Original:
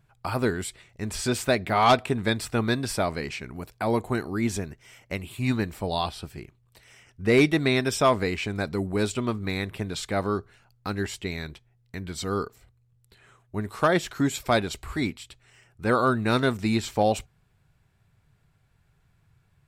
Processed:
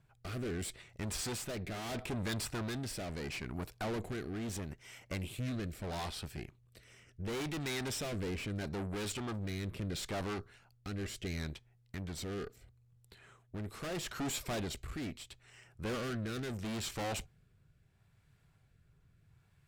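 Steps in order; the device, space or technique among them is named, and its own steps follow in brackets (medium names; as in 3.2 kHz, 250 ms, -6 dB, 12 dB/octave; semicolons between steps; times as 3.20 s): overdriven rotary cabinet (valve stage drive 36 dB, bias 0.65; rotary cabinet horn 0.75 Hz); trim +2 dB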